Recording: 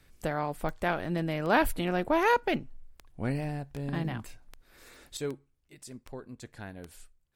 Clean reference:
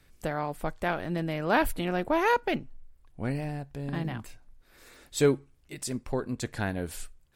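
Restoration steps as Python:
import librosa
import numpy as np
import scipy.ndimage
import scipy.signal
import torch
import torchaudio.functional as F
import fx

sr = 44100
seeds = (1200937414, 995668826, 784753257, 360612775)

y = fx.fix_declick_ar(x, sr, threshold=10.0)
y = fx.gain(y, sr, db=fx.steps((0.0, 0.0), (5.17, 12.0)))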